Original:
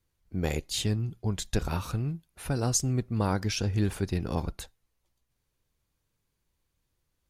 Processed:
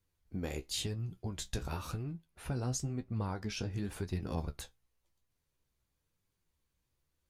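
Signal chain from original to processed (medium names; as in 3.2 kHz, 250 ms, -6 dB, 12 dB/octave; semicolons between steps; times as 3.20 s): 2.03–3.71 s: treble shelf 5 kHz -7.5 dB; compression, threshold -28 dBFS, peak gain reduction 7.5 dB; flange 0.95 Hz, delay 9.8 ms, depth 6.9 ms, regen +42%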